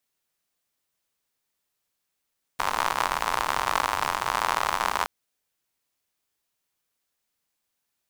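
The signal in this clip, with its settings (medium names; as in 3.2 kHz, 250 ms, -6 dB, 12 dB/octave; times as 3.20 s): rain from filtered ticks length 2.47 s, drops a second 89, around 1 kHz, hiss -15 dB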